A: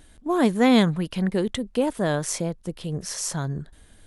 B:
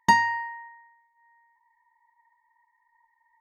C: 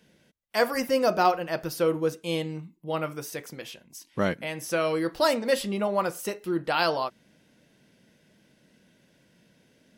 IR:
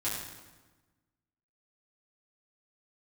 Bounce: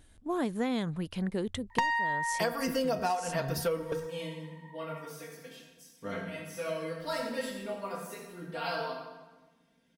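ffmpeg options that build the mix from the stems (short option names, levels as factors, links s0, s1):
-filter_complex "[0:a]equalizer=f=89:t=o:w=0.23:g=13,volume=0.398,asplit=2[s0][s1];[1:a]asplit=2[s2][s3];[s3]highpass=f=720:p=1,volume=7.94,asoftclip=type=tanh:threshold=0.562[s4];[s2][s4]amix=inputs=2:normalize=0,lowpass=f=3400:p=1,volume=0.501,adelay=1700,volume=1.12[s5];[2:a]aecho=1:1:4.4:0.92,adelay=1850,volume=0.631,asplit=2[s6][s7];[s7]volume=0.2[s8];[s1]apad=whole_len=521507[s9];[s6][s9]sidechaingate=range=0.0708:threshold=0.00178:ratio=16:detection=peak[s10];[3:a]atrim=start_sample=2205[s11];[s8][s11]afir=irnorm=-1:irlink=0[s12];[s0][s5][s10][s12]amix=inputs=4:normalize=0,acompressor=threshold=0.0501:ratio=20"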